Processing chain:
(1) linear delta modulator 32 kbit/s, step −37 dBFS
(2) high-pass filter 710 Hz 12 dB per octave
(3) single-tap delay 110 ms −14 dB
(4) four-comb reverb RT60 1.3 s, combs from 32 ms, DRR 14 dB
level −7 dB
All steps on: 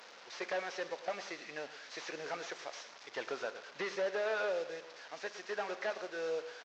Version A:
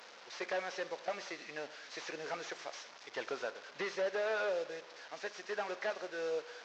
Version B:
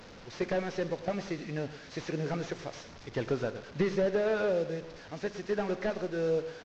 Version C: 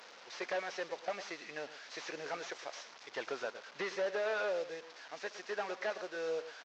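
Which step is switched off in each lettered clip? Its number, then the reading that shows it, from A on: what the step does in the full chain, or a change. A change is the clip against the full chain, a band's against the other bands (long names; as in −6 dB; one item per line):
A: 3, echo-to-direct ratio −11.0 dB to −14.0 dB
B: 2, 125 Hz band +23.5 dB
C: 4, echo-to-direct ratio −11.0 dB to −14.0 dB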